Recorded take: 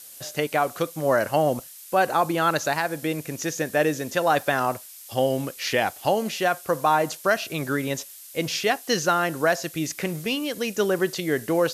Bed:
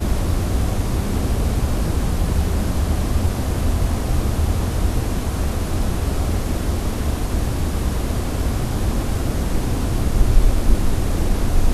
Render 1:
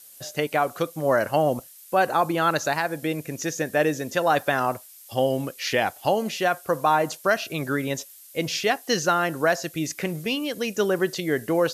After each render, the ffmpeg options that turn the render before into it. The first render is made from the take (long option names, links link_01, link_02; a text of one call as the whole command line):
ffmpeg -i in.wav -af "afftdn=noise_reduction=6:noise_floor=-44" out.wav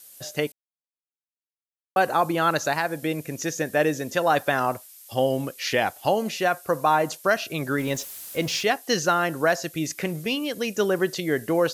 ffmpeg -i in.wav -filter_complex "[0:a]asettb=1/sr,asplit=3[link_01][link_02][link_03];[link_01]atrim=end=6.314[link_04];[link_02]atrim=start=6.31:end=6.92,asetpts=PTS-STARTPTS,afade=type=in:duration=0.004:curve=qsin,afade=type=out:start_time=0.606:duration=0.004:curve=qsin,bandreject=frequency=3200:width=12[link_05];[link_03]atrim=start=6.916[link_06];[link_04][link_05]acrossfade=duration=0.004:curve1=hsin:curve2=qsin[link_07];[link_07][link_06]acrossfade=duration=0.004:curve1=qsin:curve2=hsin,asettb=1/sr,asplit=3[link_08][link_09][link_10];[link_08]atrim=end=7.784[link_11];[link_09]atrim=start=7.78:end=8.63,asetpts=PTS-STARTPTS,afade=type=in:duration=0.004:curve=qsin,afade=type=out:start_time=0.846:duration=0.004:curve=qsin,aeval=exprs='val(0)+0.5*0.015*sgn(val(0))':channel_layout=same[link_12];[link_10]atrim=start=8.626[link_13];[link_11][link_12]acrossfade=duration=0.004:curve1=hsin:curve2=qsin[link_14];[link_14][link_13]acrossfade=duration=0.004:curve1=qsin:curve2=hsin,asplit=3[link_15][link_16][link_17];[link_15]atrim=end=0.52,asetpts=PTS-STARTPTS,afade=type=out:start_time=0.516:duration=0.004:curve=hsin[link_18];[link_16]atrim=start=0.52:end=1.96,asetpts=PTS-STARTPTS,volume=0[link_19];[link_17]atrim=start=1.96,asetpts=PTS-STARTPTS,afade=type=in:duration=0.004:curve=hsin[link_20];[link_18][link_19][link_20]concat=n=3:v=0:a=1" out.wav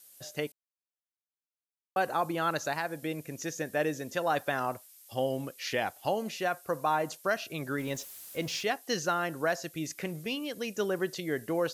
ffmpeg -i in.wav -af "volume=-8dB" out.wav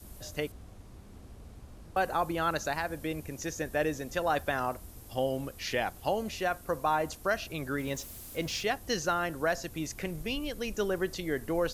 ffmpeg -i in.wav -i bed.wav -filter_complex "[1:a]volume=-29.5dB[link_01];[0:a][link_01]amix=inputs=2:normalize=0" out.wav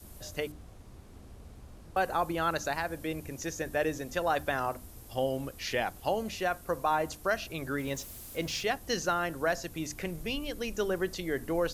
ffmpeg -i in.wav -af "bandreject=frequency=50:width_type=h:width=6,bandreject=frequency=100:width_type=h:width=6,bandreject=frequency=150:width_type=h:width=6,bandreject=frequency=200:width_type=h:width=6,bandreject=frequency=250:width_type=h:width=6,bandreject=frequency=300:width_type=h:width=6" out.wav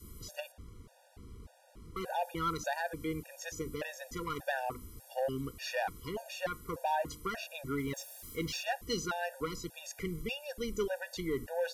ffmpeg -i in.wav -af "asoftclip=type=tanh:threshold=-23.5dB,afftfilt=real='re*gt(sin(2*PI*1.7*pts/sr)*(1-2*mod(floor(b*sr/1024/480),2)),0)':imag='im*gt(sin(2*PI*1.7*pts/sr)*(1-2*mod(floor(b*sr/1024/480),2)),0)':win_size=1024:overlap=0.75" out.wav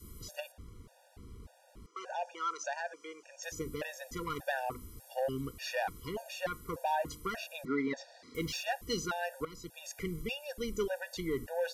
ffmpeg -i in.wav -filter_complex "[0:a]asettb=1/sr,asplit=3[link_01][link_02][link_03];[link_01]atrim=end=1.864[link_04];[link_02]atrim=start=1.86:end=3.43,asetpts=PTS-STARTPTS,afade=type=in:duration=0.004:curve=qsin,afade=type=out:start_time=1.566:duration=0.004:curve=qsin,highpass=frequency=480:width=0.5412,highpass=frequency=480:width=1.3066,equalizer=frequency=480:width_type=q:width=4:gain=-4,equalizer=frequency=810:width_type=q:width=4:gain=-4,equalizer=frequency=2000:width_type=q:width=4:gain=-5,equalizer=frequency=3900:width_type=q:width=4:gain=-9,equalizer=frequency=6000:width_type=q:width=4:gain=5,lowpass=frequency=6800:width=0.5412,lowpass=frequency=6800:width=1.3066[link_05];[link_03]atrim=start=3.426[link_06];[link_04][link_05]acrossfade=duration=0.004:curve1=hsin:curve2=qsin[link_07];[link_07][link_06]acrossfade=duration=0.004:curve1=qsin:curve2=hsin,asettb=1/sr,asplit=3[link_08][link_09][link_10];[link_08]atrim=end=7.654[link_11];[link_09]atrim=start=7.65:end=8.35,asetpts=PTS-STARTPTS,afade=type=in:duration=0.004:curve=qsin,afade=type=out:start_time=0.696:duration=0.004:curve=qsin,highpass=230,equalizer=frequency=250:width_type=q:width=4:gain=8,equalizer=frequency=460:width_type=q:width=4:gain=4,equalizer=frequency=720:width_type=q:width=4:gain=7,equalizer=frequency=1900:width_type=q:width=4:gain=8,equalizer=frequency=3000:width_type=q:width=4:gain=-9,equalizer=frequency=4400:width_type=q:width=4:gain=5,lowpass=frequency=5000:width=0.5412,lowpass=frequency=5000:width=1.3066[link_12];[link_10]atrim=start=8.346[link_13];[link_11][link_12]acrossfade=duration=0.004:curve1=hsin:curve2=qsin[link_14];[link_14][link_13]acrossfade=duration=0.004:curve1=qsin:curve2=hsin,asplit=2[link_15][link_16];[link_15]atrim=end=9.45,asetpts=PTS-STARTPTS,afade=type=out:start_time=9.446:duration=0.004:curve=hsin:silence=0.237137[link_17];[link_16]atrim=start=9.45,asetpts=PTS-STARTPTS,afade=type=in:duration=0.43:silence=0.237137[link_18];[link_17][link_18]concat=n=2:v=0:a=1" out.wav